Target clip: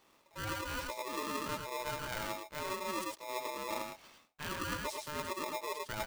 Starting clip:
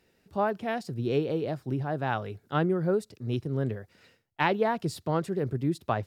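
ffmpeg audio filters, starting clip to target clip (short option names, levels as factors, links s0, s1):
-af "areverse,acompressor=threshold=0.0141:ratio=12,areverse,aecho=1:1:84|107:0.335|0.668,aeval=exprs='val(0)*sgn(sin(2*PI*750*n/s))':c=same"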